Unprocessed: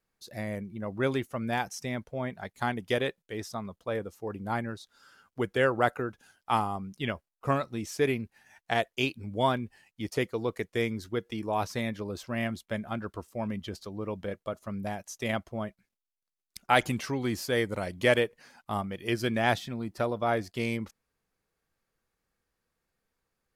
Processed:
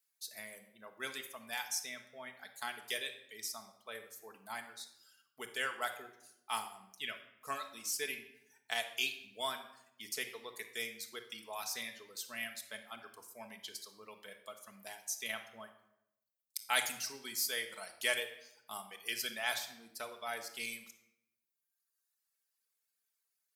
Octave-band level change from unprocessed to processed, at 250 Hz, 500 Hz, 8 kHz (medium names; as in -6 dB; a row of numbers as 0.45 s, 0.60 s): -23.5 dB, -17.0 dB, +5.0 dB